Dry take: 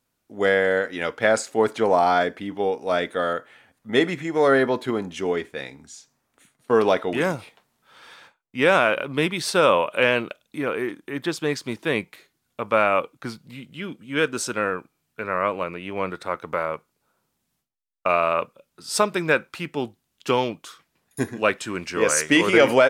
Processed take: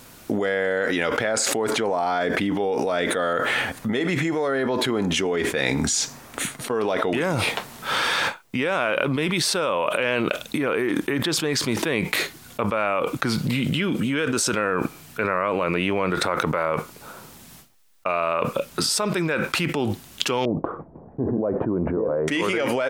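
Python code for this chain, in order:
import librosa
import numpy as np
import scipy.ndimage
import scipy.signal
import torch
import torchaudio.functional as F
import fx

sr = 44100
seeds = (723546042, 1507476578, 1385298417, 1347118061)

y = fx.cheby2_lowpass(x, sr, hz=4500.0, order=4, stop_db=80, at=(20.45, 22.28))
y = fx.env_flatten(y, sr, amount_pct=100)
y = y * librosa.db_to_amplitude(-10.5)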